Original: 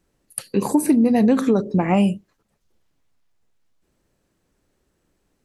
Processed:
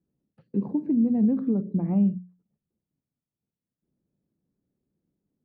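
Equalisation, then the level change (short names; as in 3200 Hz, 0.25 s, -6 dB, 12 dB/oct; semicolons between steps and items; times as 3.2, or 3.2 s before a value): band-pass 180 Hz, Q 1.6; air absorption 210 m; notches 60/120/180 Hz; -2.5 dB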